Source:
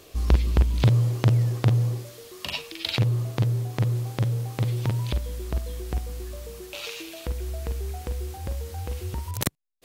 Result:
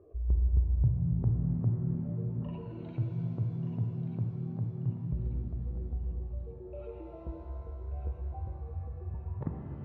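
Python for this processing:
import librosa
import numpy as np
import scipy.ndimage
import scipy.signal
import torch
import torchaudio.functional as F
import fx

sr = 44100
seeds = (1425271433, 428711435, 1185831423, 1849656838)

y = fx.spec_expand(x, sr, power=2.0)
y = scipy.signal.sosfilt(scipy.signal.butter(4, 1300.0, 'lowpass', fs=sr, output='sos'), y)
y = fx.echo_thinned(y, sr, ms=1185, feedback_pct=41, hz=780.0, wet_db=-8.0)
y = fx.rev_shimmer(y, sr, seeds[0], rt60_s=3.4, semitones=7, shimmer_db=-8, drr_db=1.5)
y = y * librosa.db_to_amplitude(-7.5)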